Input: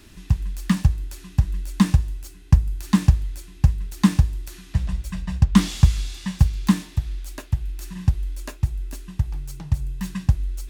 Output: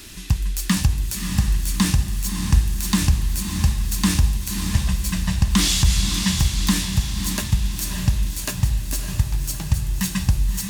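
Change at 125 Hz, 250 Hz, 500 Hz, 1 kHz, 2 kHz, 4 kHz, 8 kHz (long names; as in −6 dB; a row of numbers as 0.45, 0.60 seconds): 0.0, −1.0, +3.0, +2.0, +7.0, +11.5, +13.5 decibels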